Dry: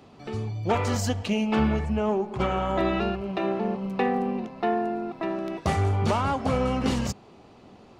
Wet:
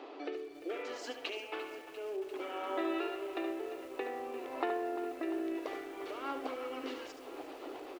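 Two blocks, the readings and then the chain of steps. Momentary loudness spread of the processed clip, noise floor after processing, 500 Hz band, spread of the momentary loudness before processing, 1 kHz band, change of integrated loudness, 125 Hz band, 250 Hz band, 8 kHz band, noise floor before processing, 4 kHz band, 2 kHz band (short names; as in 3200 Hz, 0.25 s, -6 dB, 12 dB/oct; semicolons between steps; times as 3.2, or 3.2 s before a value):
9 LU, -50 dBFS, -10.0 dB, 6 LU, -13.0 dB, -13.0 dB, under -40 dB, -14.0 dB, -17.0 dB, -52 dBFS, -9.5 dB, -9.5 dB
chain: LPF 3400 Hz 12 dB/oct; dynamic EQ 720 Hz, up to -7 dB, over -39 dBFS, Q 0.84; compressor 8:1, threshold -40 dBFS, peak gain reduction 19 dB; rotary speaker horn 0.6 Hz, later 8 Hz, at 5.77; brick-wall FIR high-pass 270 Hz; on a send: echo 73 ms -9 dB; on the sum: lo-fi delay 0.347 s, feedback 80%, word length 10-bit, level -13 dB; gain +9 dB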